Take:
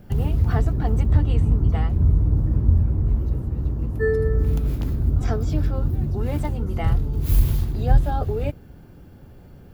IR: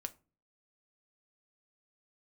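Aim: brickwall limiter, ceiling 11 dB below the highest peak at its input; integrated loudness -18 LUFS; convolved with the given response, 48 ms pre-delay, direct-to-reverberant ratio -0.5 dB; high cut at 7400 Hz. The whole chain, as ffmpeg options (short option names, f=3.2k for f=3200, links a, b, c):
-filter_complex "[0:a]lowpass=7.4k,alimiter=limit=-15.5dB:level=0:latency=1,asplit=2[a][b];[1:a]atrim=start_sample=2205,adelay=48[c];[b][c]afir=irnorm=-1:irlink=0,volume=3dB[d];[a][d]amix=inputs=2:normalize=0,volume=5dB"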